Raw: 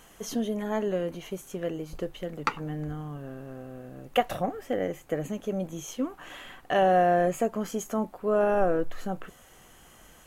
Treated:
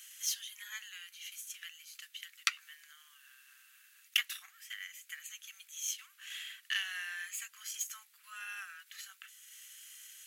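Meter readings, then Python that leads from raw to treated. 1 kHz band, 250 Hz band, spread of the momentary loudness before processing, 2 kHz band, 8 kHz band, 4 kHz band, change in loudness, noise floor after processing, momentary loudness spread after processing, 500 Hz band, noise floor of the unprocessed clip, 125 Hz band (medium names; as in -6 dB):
-25.0 dB, under -40 dB, 17 LU, -2.0 dB, +4.5 dB, +4.5 dB, -11.0 dB, -65 dBFS, 20 LU, under -40 dB, -54 dBFS, under -40 dB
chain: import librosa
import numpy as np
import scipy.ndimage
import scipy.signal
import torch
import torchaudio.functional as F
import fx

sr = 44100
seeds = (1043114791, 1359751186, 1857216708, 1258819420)

y = fx.tracing_dist(x, sr, depth_ms=0.036)
y = fx.transient(y, sr, attack_db=2, sustain_db=-4)
y = scipy.signal.sosfilt(scipy.signal.bessel(8, 3000.0, 'highpass', norm='mag', fs=sr, output='sos'), y)
y = F.gain(torch.from_numpy(y), 6.5).numpy()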